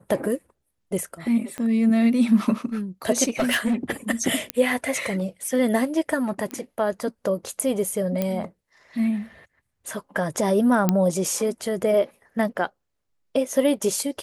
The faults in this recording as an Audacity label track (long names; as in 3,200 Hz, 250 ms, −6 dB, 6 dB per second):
1.580000	1.580000	click −18 dBFS
3.270000	3.910000	clipping −17.5 dBFS
4.500000	4.500000	click −7 dBFS
6.510000	6.510000	click −18 dBFS
8.220000	8.220000	click −11 dBFS
10.890000	10.890000	click −6 dBFS